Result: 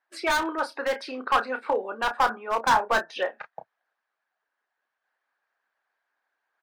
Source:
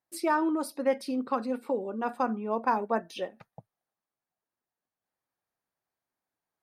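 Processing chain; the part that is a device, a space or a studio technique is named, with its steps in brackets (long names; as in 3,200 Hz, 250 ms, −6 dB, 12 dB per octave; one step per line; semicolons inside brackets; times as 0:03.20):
megaphone (band-pass filter 660–3,100 Hz; parametric band 1,600 Hz +11 dB 0.33 octaves; hard clipping −26.5 dBFS, distortion −7 dB; double-tracking delay 31 ms −8 dB)
0:02.09–0:03.20: dynamic equaliser 2,900 Hz, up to −6 dB, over −50 dBFS, Q 1.4
harmonic and percussive parts rebalanced percussive +8 dB
low-shelf EQ 180 Hz +3.5 dB
level +5 dB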